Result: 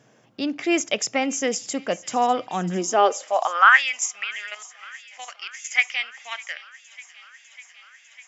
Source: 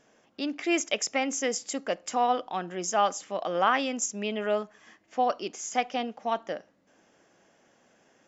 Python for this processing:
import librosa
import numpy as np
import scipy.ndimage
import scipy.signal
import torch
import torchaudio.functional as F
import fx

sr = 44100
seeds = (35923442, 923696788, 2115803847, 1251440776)

y = fx.level_steps(x, sr, step_db=12, at=(4.24, 5.71))
y = fx.filter_sweep_highpass(y, sr, from_hz=120.0, to_hz=2100.0, start_s=2.51, end_s=3.84, q=5.4)
y = fx.echo_wet_highpass(y, sr, ms=600, feedback_pct=77, hz=2400.0, wet_db=-17.0)
y = y * librosa.db_to_amplitude(4.0)